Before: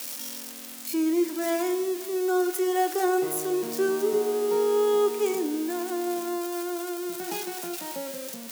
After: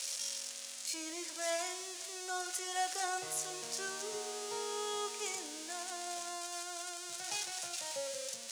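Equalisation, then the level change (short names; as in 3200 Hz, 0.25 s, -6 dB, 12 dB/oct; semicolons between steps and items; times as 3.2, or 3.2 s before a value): EQ curve 110 Hz 0 dB, 180 Hz -22 dB, 380 Hz -26 dB, 550 Hz -6 dB, 790 Hz -12 dB, 6600 Hz +1 dB, 9800 Hz -5 dB, 14000 Hz -27 dB; +1.5 dB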